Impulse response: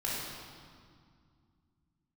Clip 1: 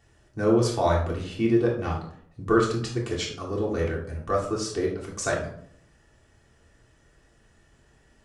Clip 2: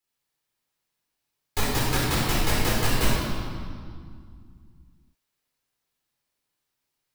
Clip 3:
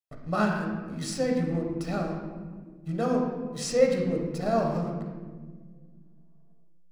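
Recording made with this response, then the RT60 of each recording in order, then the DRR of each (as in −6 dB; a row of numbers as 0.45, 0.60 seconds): 2; 0.65, 2.1, 1.5 seconds; −4.0, −6.5, 1.0 decibels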